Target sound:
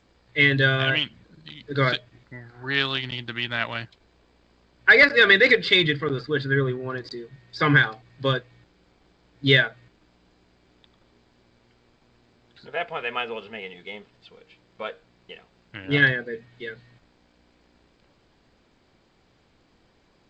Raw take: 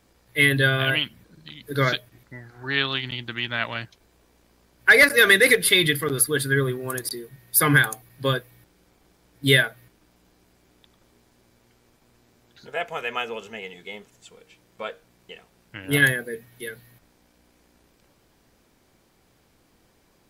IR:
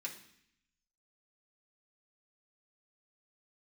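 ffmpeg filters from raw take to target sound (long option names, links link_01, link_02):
-filter_complex "[0:a]asplit=3[link_01][link_02][link_03];[link_01]afade=type=out:start_time=5.81:duration=0.02[link_04];[link_02]highshelf=frequency=3600:gain=-8.5,afade=type=in:start_time=5.81:duration=0.02,afade=type=out:start_time=7.15:duration=0.02[link_05];[link_03]afade=type=in:start_time=7.15:duration=0.02[link_06];[link_04][link_05][link_06]amix=inputs=3:normalize=0,aresample=11025,aresample=44100" -ar 16000 -c:a g722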